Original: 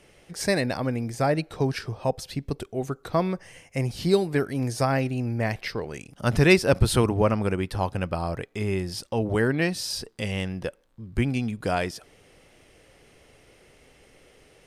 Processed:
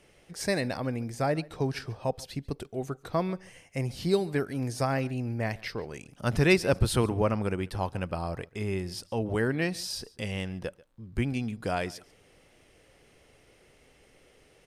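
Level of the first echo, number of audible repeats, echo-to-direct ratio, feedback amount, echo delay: -22.5 dB, 1, -22.5 dB, no regular repeats, 140 ms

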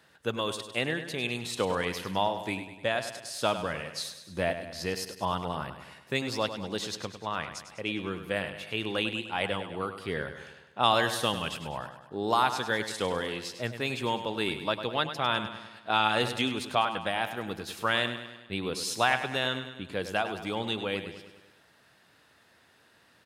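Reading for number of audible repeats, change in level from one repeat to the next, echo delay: 5, -5.0 dB, 101 ms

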